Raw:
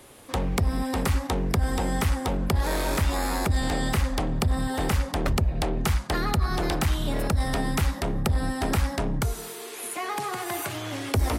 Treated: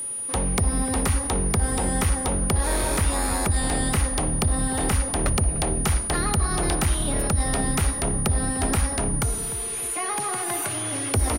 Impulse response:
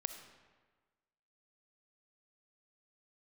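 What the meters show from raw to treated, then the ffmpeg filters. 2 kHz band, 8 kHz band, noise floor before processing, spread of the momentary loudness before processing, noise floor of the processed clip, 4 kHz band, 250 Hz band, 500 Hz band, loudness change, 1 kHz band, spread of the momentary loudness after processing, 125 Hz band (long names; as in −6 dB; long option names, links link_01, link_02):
+1.0 dB, +13.0 dB, −39 dBFS, 5 LU, −29 dBFS, +1.0 dB, +1.5 dB, +1.0 dB, +3.5 dB, +1.0 dB, 2 LU, +1.5 dB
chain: -filter_complex "[0:a]asplit=2[link_01][link_02];[link_02]adelay=298,lowpass=frequency=840:poles=1,volume=-11.5dB,asplit=2[link_03][link_04];[link_04]adelay=298,lowpass=frequency=840:poles=1,volume=0.28,asplit=2[link_05][link_06];[link_06]adelay=298,lowpass=frequency=840:poles=1,volume=0.28[link_07];[link_01][link_03][link_05][link_07]amix=inputs=4:normalize=0,aeval=exprs='0.188*(cos(1*acos(clip(val(0)/0.188,-1,1)))-cos(1*PI/2))+0.00266*(cos(4*acos(clip(val(0)/0.188,-1,1)))-cos(4*PI/2))':channel_layout=same,aeval=exprs='val(0)+0.0355*sin(2*PI*9600*n/s)':channel_layout=same,asplit=2[link_08][link_09];[1:a]atrim=start_sample=2205[link_10];[link_09][link_10]afir=irnorm=-1:irlink=0,volume=-8.5dB[link_11];[link_08][link_11]amix=inputs=2:normalize=0,volume=-1.5dB"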